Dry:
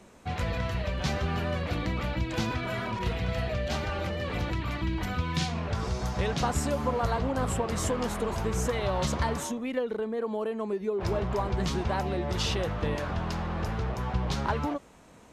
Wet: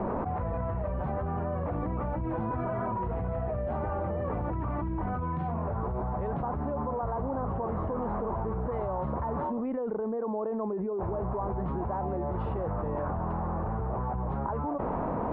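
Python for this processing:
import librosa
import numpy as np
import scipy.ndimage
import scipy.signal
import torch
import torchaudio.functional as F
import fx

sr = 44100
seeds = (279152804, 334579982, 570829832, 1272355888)

y = fx.ladder_lowpass(x, sr, hz=1200.0, resonance_pct=35)
y = fx.env_flatten(y, sr, amount_pct=100)
y = F.gain(torch.from_numpy(y), -1.5).numpy()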